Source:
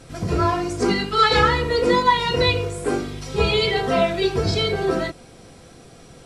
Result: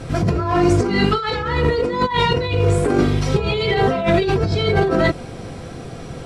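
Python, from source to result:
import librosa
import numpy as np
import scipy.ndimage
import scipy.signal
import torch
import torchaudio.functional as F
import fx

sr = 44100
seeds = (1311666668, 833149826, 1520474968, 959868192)

y = fx.peak_eq(x, sr, hz=110.0, db=4.0, octaves=1.1)
y = fx.over_compress(y, sr, threshold_db=-25.0, ratio=-1.0)
y = fx.high_shelf(y, sr, hz=4200.0, db=-11.0)
y = y * 10.0 ** (7.5 / 20.0)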